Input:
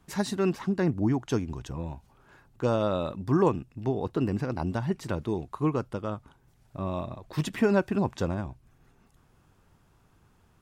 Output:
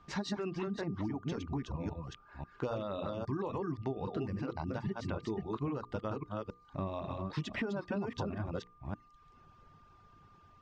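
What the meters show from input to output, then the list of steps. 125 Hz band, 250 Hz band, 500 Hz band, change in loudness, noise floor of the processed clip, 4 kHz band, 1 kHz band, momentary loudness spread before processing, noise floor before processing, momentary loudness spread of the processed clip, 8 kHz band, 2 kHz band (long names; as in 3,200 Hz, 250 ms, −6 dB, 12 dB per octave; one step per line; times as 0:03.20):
−8.0 dB, −9.0 dB, −9.5 dB, −9.5 dB, −62 dBFS, −5.0 dB, −7.5 dB, 12 LU, −63 dBFS, 6 LU, below −10 dB, −6.5 dB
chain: delay that plays each chunk backwards 271 ms, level −3 dB
brickwall limiter −18.5 dBFS, peak gain reduction 8 dB
mains-hum notches 60/120/180/240/300/360/420/480 Hz
downward compressor, threshold −32 dBFS, peak gain reduction 9.5 dB
low-pass filter 5,600 Hz 24 dB per octave
reverb reduction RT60 0.78 s
steady tone 1,200 Hz −61 dBFS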